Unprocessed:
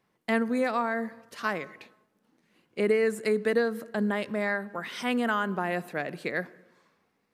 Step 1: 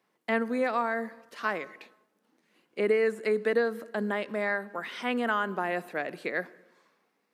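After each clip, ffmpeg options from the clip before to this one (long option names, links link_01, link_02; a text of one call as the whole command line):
ffmpeg -i in.wav -filter_complex "[0:a]highpass=250,acrossover=split=3800[link_01][link_02];[link_02]acompressor=threshold=-53dB:ratio=4:attack=1:release=60[link_03];[link_01][link_03]amix=inputs=2:normalize=0" out.wav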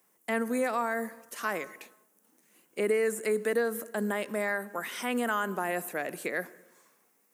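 ffmpeg -i in.wav -filter_complex "[0:a]asplit=2[link_01][link_02];[link_02]alimiter=limit=-23.5dB:level=0:latency=1,volume=0dB[link_03];[link_01][link_03]amix=inputs=2:normalize=0,aexciter=amount=7.4:drive=3.9:freq=6200,volume=-5.5dB" out.wav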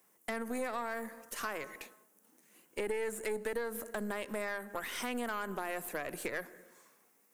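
ffmpeg -i in.wav -af "acompressor=threshold=-36dB:ratio=3,aeval=exprs='0.075*(cos(1*acos(clip(val(0)/0.075,-1,1)))-cos(1*PI/2))+0.00596*(cos(4*acos(clip(val(0)/0.075,-1,1)))-cos(4*PI/2))+0.00944*(cos(6*acos(clip(val(0)/0.075,-1,1)))-cos(6*PI/2))':channel_layout=same" out.wav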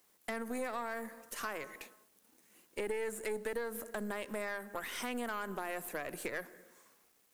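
ffmpeg -i in.wav -af "acrusher=bits=10:mix=0:aa=0.000001,volume=-1.5dB" out.wav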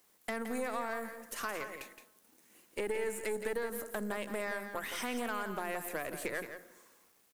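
ffmpeg -i in.wav -af "aecho=1:1:169:0.355,volume=1.5dB" out.wav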